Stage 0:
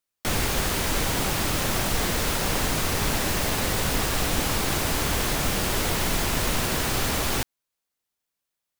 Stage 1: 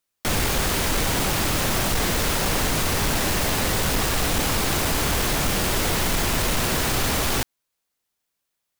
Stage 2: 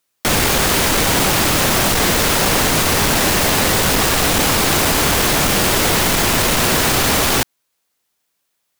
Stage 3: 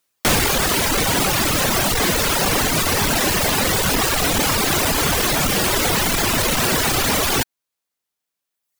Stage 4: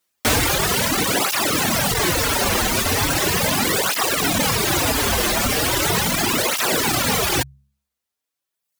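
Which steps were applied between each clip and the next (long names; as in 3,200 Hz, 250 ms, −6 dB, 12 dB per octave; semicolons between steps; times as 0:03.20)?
soft clipping −20 dBFS, distortion −16 dB; level +4.5 dB
low-shelf EQ 88 Hz −9 dB; level +8.5 dB
reverb reduction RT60 1.4 s
hum removal 68.27 Hz, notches 3; through-zero flanger with one copy inverted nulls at 0.38 Hz, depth 7.4 ms; level +2 dB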